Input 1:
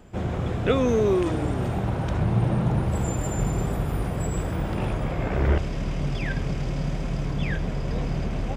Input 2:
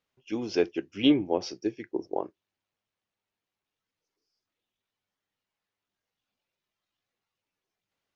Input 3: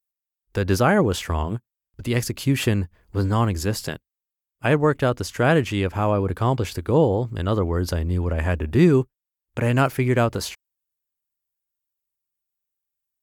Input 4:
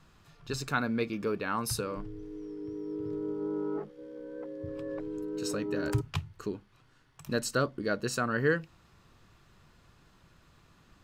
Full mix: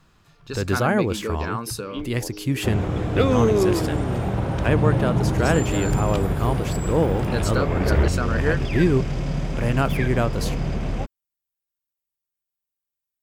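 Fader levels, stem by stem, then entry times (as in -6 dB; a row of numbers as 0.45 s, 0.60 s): +2.0 dB, -12.0 dB, -3.0 dB, +2.5 dB; 2.50 s, 0.90 s, 0.00 s, 0.00 s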